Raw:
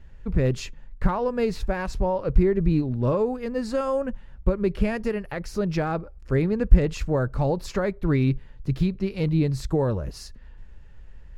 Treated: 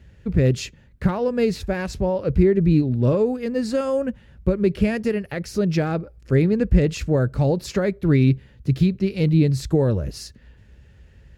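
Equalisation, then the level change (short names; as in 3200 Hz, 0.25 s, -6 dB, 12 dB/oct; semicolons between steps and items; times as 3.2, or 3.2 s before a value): HPF 59 Hz 24 dB/oct; bell 1000 Hz -9.5 dB 1.1 oct; +5.5 dB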